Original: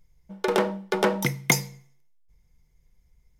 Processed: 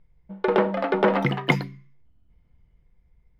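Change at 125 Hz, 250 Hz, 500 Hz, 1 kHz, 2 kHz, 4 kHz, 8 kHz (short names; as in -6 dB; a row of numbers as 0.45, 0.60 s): +2.5 dB, +3.5 dB, +3.5 dB, +3.5 dB, +0.5 dB, -2.5 dB, under -20 dB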